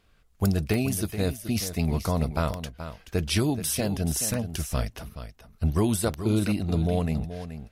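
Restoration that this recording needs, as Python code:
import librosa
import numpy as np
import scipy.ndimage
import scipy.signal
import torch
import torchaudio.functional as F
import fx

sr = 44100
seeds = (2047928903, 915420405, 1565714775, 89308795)

y = fx.fix_declick_ar(x, sr, threshold=10.0)
y = fx.fix_echo_inverse(y, sr, delay_ms=428, level_db=-11.0)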